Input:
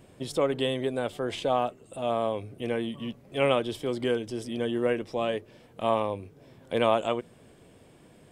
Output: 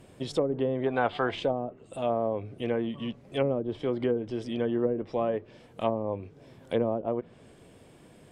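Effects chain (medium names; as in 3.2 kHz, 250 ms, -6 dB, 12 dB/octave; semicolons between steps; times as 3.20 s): low-pass that closes with the level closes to 420 Hz, closed at -21 dBFS; time-frequency box 0.86–1.31 s, 660–5100 Hz +10 dB; trim +1 dB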